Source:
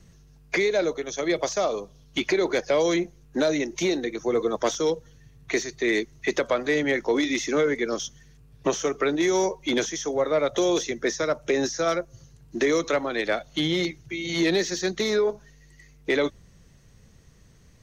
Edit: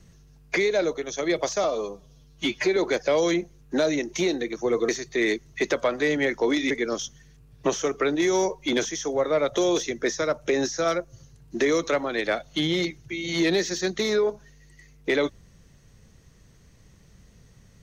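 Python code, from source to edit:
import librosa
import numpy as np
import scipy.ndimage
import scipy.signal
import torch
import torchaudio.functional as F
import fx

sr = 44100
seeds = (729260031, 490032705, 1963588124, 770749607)

y = fx.edit(x, sr, fx.stretch_span(start_s=1.64, length_s=0.75, factor=1.5),
    fx.cut(start_s=4.51, length_s=1.04),
    fx.cut(start_s=7.37, length_s=0.34), tone=tone)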